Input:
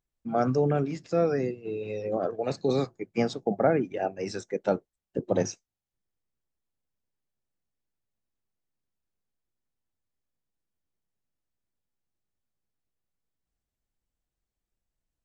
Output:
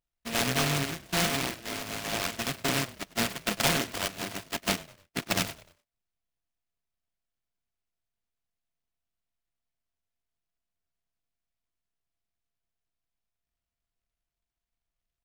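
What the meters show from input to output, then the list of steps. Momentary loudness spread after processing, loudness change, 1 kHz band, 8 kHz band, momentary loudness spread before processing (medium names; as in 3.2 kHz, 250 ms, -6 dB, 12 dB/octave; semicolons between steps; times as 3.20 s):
9 LU, -1.0 dB, -1.0 dB, no reading, 9 LU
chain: sorted samples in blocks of 64 samples; frequency-shifting echo 100 ms, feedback 40%, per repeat -34 Hz, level -19 dB; delay time shaken by noise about 1.9 kHz, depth 0.29 ms; trim -3 dB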